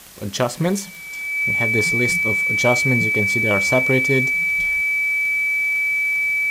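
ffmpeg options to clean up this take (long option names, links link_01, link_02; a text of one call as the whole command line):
ffmpeg -i in.wav -af "adeclick=threshold=4,bandreject=frequency=2300:width=30,afwtdn=0.0079" out.wav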